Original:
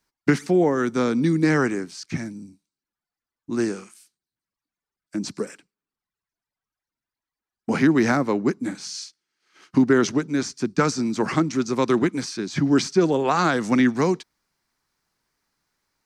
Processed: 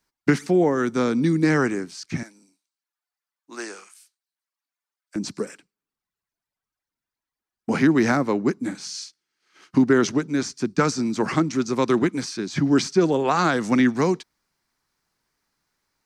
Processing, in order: 2.23–5.16 HPF 700 Hz 12 dB/oct

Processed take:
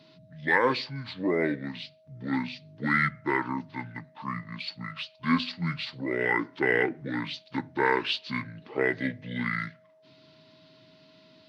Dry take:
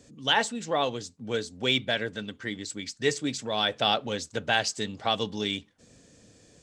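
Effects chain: HPF 240 Hz 24 dB/oct; notch 1200 Hz, Q 6.4; whine 1100 Hz -58 dBFS; speed mistake 78 rpm record played at 45 rpm

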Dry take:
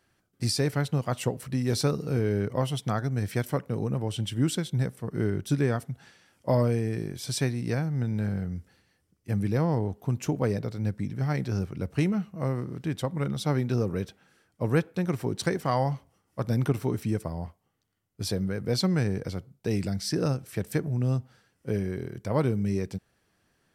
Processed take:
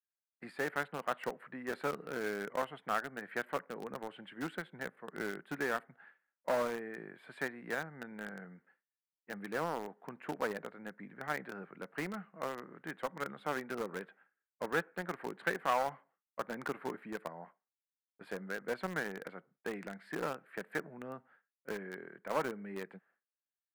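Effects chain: elliptic band-pass 170–1700 Hz, stop band 50 dB; expander -51 dBFS; differentiator; in parallel at -8.5 dB: requantised 8-bit, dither none; on the sum: core saturation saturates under 1100 Hz; gain +14 dB

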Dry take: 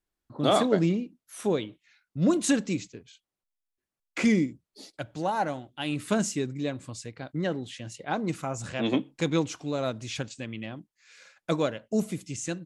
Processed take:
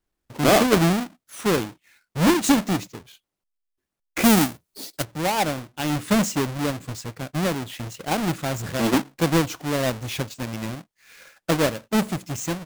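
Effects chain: half-waves squared off; 4.22–5.03 high shelf 7600 Hz -> 3900 Hz +11.5 dB; gain +1.5 dB

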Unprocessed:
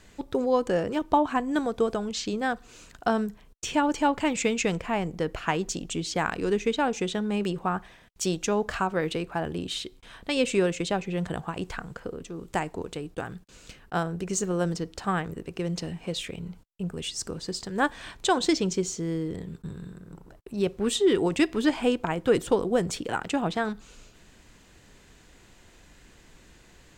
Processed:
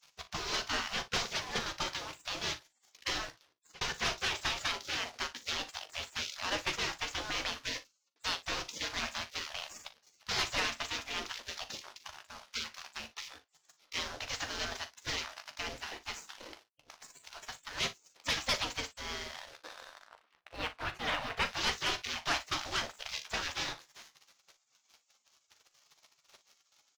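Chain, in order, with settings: CVSD 32 kbps; spectral gate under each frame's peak -25 dB weak; 16.31–17.33 negative-ratio compressor -59 dBFS, ratio -0.5; 20.07–21.45 LPF 2700 Hz 12 dB/oct; sample leveller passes 2; early reflections 13 ms -10 dB, 40 ms -14 dB, 58 ms -17 dB; 3.25–3.81 fade out equal-power; gain +1 dB

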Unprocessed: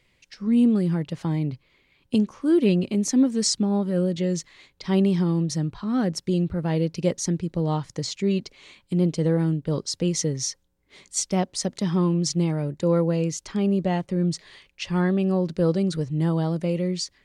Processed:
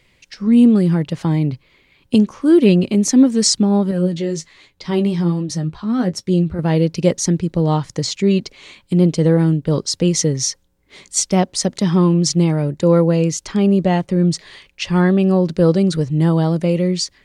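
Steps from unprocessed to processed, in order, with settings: 3.91–6.59 flange 1.3 Hz, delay 9.3 ms, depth 5 ms, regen +35%; gain +8 dB

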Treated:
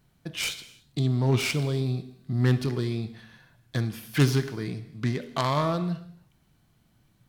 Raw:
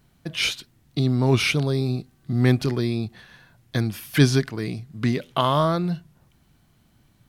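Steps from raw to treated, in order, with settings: self-modulated delay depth 0.18 ms; non-linear reverb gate 0.34 s falling, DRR 10.5 dB; gain -5 dB

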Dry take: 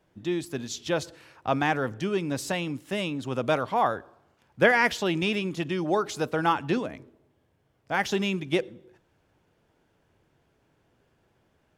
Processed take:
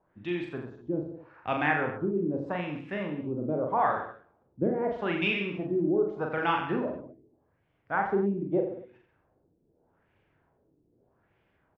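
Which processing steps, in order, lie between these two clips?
LFO low-pass sine 0.81 Hz 310–2600 Hz; reverse bouncing-ball echo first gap 40 ms, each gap 1.1×, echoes 5; gain -6 dB

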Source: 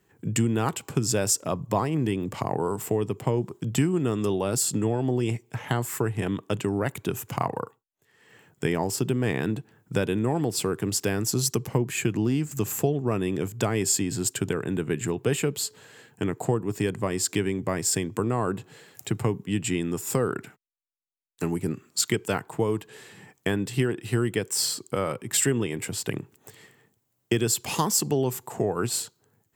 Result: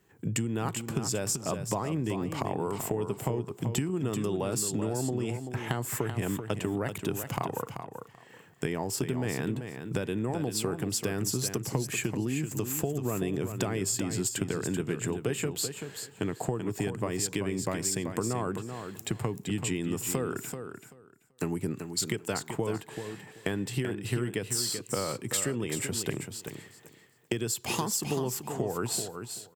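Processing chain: compressor, threshold -27 dBFS, peak gain reduction 9.5 dB; on a send: feedback echo 0.385 s, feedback 17%, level -8 dB

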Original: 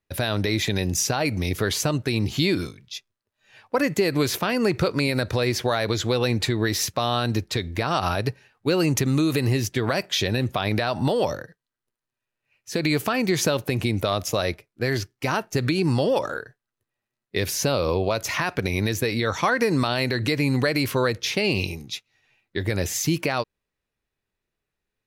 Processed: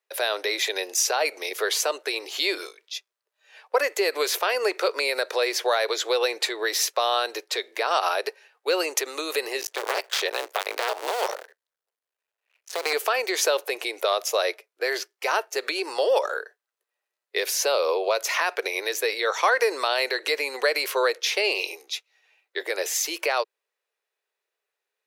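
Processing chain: 9.61–12.93 cycle switcher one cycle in 2, muted; steep high-pass 410 Hz 48 dB/oct; gain +1.5 dB

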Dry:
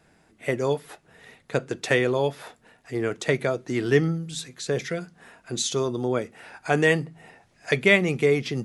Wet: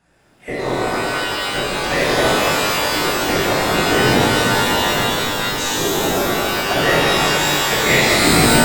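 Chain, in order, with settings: tape stop at the end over 0.52 s; whisperiser; shimmer reverb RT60 3.6 s, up +12 st, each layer -2 dB, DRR -9.5 dB; gain -4 dB

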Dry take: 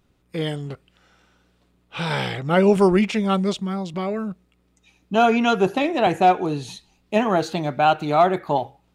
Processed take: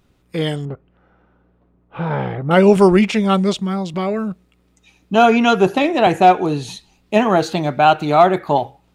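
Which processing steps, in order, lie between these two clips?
0.65–2.51 LPF 1100 Hz 12 dB/oct; gain +5 dB

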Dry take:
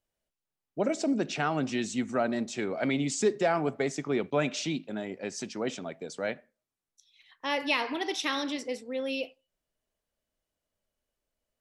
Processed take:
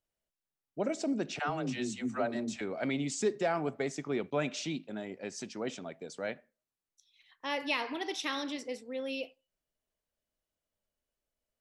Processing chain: 1.39–2.61 dispersion lows, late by 0.11 s, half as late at 310 Hz; gain -4.5 dB

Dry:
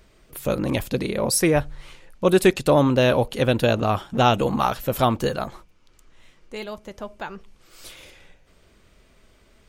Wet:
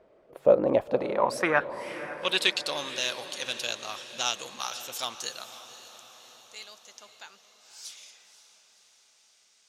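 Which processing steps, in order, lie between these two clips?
added harmonics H 7 -31 dB, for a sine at -4.5 dBFS; band-pass sweep 570 Hz -> 6000 Hz, 0.74–2.88; diffused feedback echo 0.53 s, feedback 57%, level -13 dB; gain +8.5 dB

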